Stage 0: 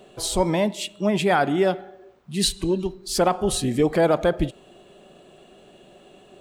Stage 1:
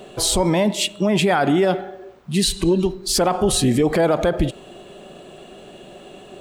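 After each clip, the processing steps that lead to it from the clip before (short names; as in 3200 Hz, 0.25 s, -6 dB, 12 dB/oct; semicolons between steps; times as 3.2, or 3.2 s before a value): limiter -18.5 dBFS, peak gain reduction 8.5 dB; gain +9 dB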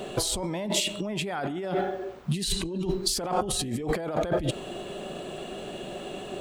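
negative-ratio compressor -26 dBFS, ratio -1; gain -3 dB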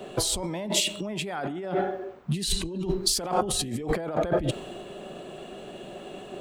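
three-band expander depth 40%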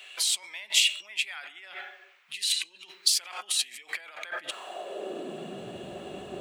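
high-pass sweep 2300 Hz -> 67 Hz, 4.22–5.9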